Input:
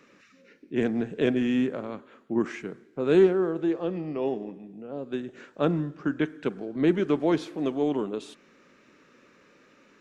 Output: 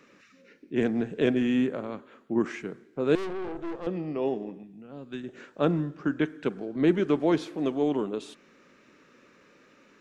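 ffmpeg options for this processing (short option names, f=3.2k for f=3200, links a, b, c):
-filter_complex "[0:a]asettb=1/sr,asplit=3[a][b][c];[a]atrim=end=1.424[d];[b]atrim=start=1.42:end=1.92,asetpts=PTS-STARTPTS,afade=t=in:d=0.004:c=qsin,afade=t=out:st=0.496:d=0.004:c=qsin,bandreject=f=5.3k:w=6[e];[c]atrim=start=1.916[f];[d][e]acrossfade=d=0.004:c1=hsin:c2=qsin[g];[g][f]acrossfade=d=0.004:c1=qsin:c2=hsin,asettb=1/sr,asplit=3[h][i][j];[h]atrim=end=3.154[k];[i]atrim=start=3.15:end=3.87,asetpts=PTS-STARTPTS,afade=t=in:d=0.004:c=qsin,afade=t=out:st=0.716:d=0.004:c=qsin,aeval=exprs='(tanh(39.8*val(0)+0.7)-tanh(0.7))/39.8':c=same[l];[j]atrim=start=3.866[m];[k][l]acrossfade=d=0.004:c1=hsin:c2=qsin[n];[n][m]acrossfade=d=0.004:c1=qsin:c2=hsin,asettb=1/sr,asplit=3[o][p][q];[o]atrim=end=4.634[r];[p]atrim=start=4.63:end=5.24,asetpts=PTS-STARTPTS,afade=t=in:d=0.004:c=qsin,afade=t=out:st=0.606:d=0.004:c=qsin,equalizer=f=510:t=o:w=1.7:g=-10.5[s];[q]atrim=start=5.236[t];[r][s]acrossfade=d=0.004:c1=hsin:c2=qsin[u];[u][t]acrossfade=d=0.004:c1=qsin:c2=hsin"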